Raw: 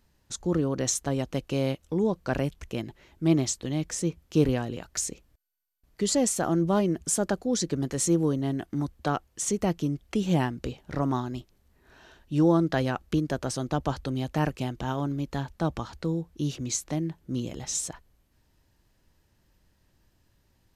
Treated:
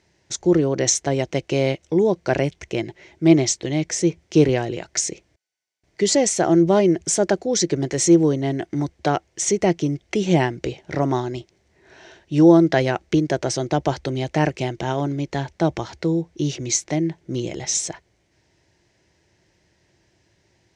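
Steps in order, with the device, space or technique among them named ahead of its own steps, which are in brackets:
car door speaker (loudspeaker in its box 100–7,800 Hz, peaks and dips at 240 Hz −8 dB, 360 Hz +7 dB, 660 Hz +4 dB, 1,200 Hz −7 dB, 2,100 Hz +8 dB, 5,800 Hz +5 dB)
level +6.5 dB

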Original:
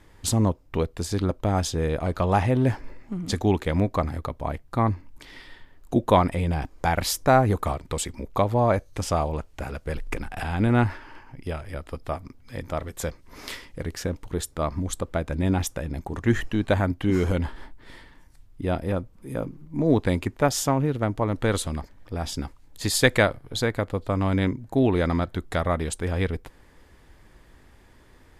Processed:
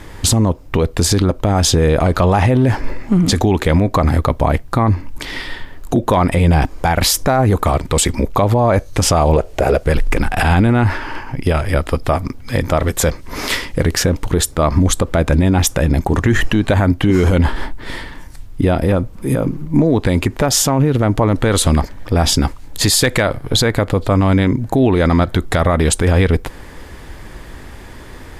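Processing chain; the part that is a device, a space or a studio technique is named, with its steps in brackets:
0:09.36–0:09.83: flat-topped bell 510 Hz +11 dB 1.2 octaves
loud club master (downward compressor 2.5 to 1, threshold −24 dBFS, peak gain reduction 8.5 dB; hard clipping −14 dBFS, distortion −35 dB; boost into a limiter +22.5 dB)
level −3.5 dB

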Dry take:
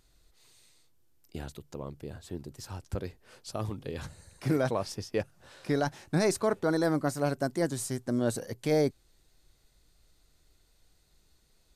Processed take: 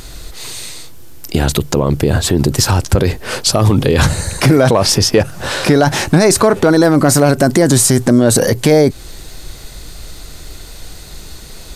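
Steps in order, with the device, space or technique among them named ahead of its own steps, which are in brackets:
loud club master (downward compressor 2.5 to 1, threshold −30 dBFS, peak gain reduction 6 dB; hard clipping −23.5 dBFS, distortion −29 dB; boost into a limiter +35 dB)
level −1 dB

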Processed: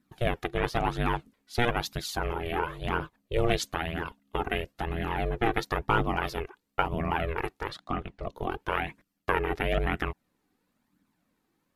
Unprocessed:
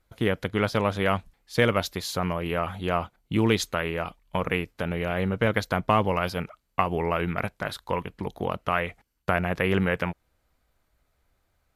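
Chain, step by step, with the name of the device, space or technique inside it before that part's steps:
alien voice (ring modulation 240 Hz; flanger 1 Hz, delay 0.5 ms, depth 2.2 ms, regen +32%)
0:03.76–0:05.13: notch filter 2,300 Hz, Q 12
0:07.69–0:08.35: high-frequency loss of the air 70 metres
level +3.5 dB

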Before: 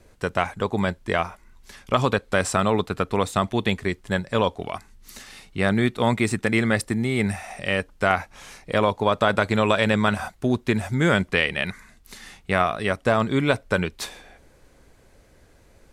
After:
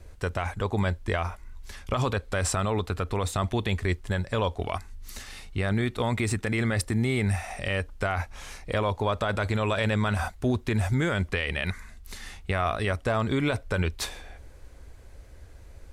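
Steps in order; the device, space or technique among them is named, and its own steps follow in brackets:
car stereo with a boomy subwoofer (low shelf with overshoot 110 Hz +9 dB, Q 1.5; brickwall limiter −16 dBFS, peak gain reduction 11 dB)

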